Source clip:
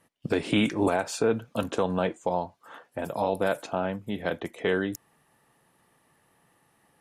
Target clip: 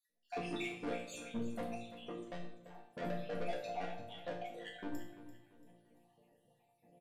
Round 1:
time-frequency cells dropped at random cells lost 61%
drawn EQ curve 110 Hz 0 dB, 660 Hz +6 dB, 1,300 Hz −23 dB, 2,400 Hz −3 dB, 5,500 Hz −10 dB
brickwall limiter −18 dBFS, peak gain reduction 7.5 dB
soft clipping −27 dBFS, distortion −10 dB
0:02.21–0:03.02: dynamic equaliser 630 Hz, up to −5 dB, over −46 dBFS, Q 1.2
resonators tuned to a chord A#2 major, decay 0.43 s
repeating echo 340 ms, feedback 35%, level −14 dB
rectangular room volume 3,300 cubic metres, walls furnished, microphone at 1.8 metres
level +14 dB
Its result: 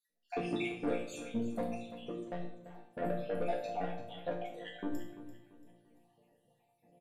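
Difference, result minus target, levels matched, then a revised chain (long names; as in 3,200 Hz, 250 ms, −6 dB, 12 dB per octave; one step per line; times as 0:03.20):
soft clipping: distortion −6 dB
time-frequency cells dropped at random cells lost 61%
drawn EQ curve 110 Hz 0 dB, 660 Hz +6 dB, 1,300 Hz −23 dB, 2,400 Hz −3 dB, 5,500 Hz −10 dB
brickwall limiter −18 dBFS, peak gain reduction 7.5 dB
soft clipping −35.5 dBFS, distortion −4 dB
0:02.21–0:03.02: dynamic equaliser 630 Hz, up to −5 dB, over −46 dBFS, Q 1.2
resonators tuned to a chord A#2 major, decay 0.43 s
repeating echo 340 ms, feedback 35%, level −14 dB
rectangular room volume 3,300 cubic metres, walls furnished, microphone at 1.8 metres
level +14 dB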